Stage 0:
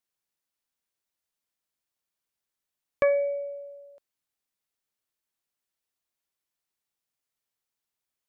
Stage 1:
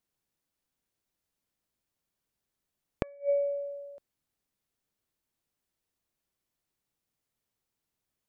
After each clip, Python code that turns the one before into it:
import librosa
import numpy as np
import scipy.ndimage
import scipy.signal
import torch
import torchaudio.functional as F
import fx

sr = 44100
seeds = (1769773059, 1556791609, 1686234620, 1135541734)

y = fx.gate_flip(x, sr, shuts_db=-20.0, range_db=-32)
y = fx.low_shelf(y, sr, hz=480.0, db=11.5)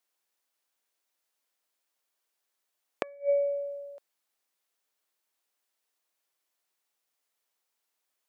y = scipy.signal.sosfilt(scipy.signal.butter(2, 560.0, 'highpass', fs=sr, output='sos'), x)
y = y * librosa.db_to_amplitude(4.5)